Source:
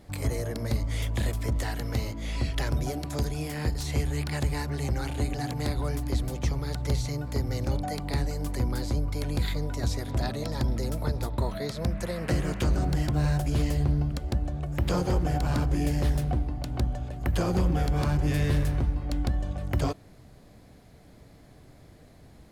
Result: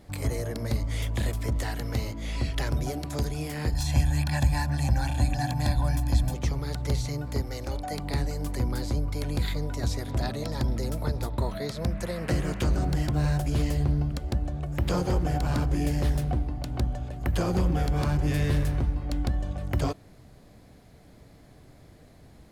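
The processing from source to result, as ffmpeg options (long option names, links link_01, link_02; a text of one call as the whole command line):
ffmpeg -i in.wav -filter_complex "[0:a]asettb=1/sr,asplit=3[link_01][link_02][link_03];[link_01]atrim=end=3.734[link_04];[link_02]atrim=start=3.73:end=6.34,asetpts=PTS-STARTPTS,afade=type=in:duration=0.004:curve=qsin,afade=type=out:start_time=2.606:duration=0.004:curve=qsin,aecho=1:1:1.2:0.86,atrim=end_sample=115101[link_05];[link_03]atrim=start=6.336[link_06];[link_04][link_05]acrossfade=duration=0.004:curve1=hsin:curve2=qsin[link_07];[link_07][link_06]acrossfade=duration=0.004:curve1=qsin:curve2=hsin,asettb=1/sr,asplit=3[link_08][link_09][link_10];[link_08]atrim=end=7.424[link_11];[link_09]atrim=start=7.42:end=7.91,asetpts=PTS-STARTPTS,afade=type=in:duration=0.004:curve=qsin,afade=type=out:start_time=0.486:duration=0.004:curve=qsin,equalizer=frequency=150:width_type=o:width=1.7:gain=-11.5[link_12];[link_10]atrim=start=7.906[link_13];[link_11][link_12]acrossfade=duration=0.004:curve1=hsin:curve2=qsin[link_14];[link_14][link_13]acrossfade=duration=0.004:curve1=qsin:curve2=hsin" out.wav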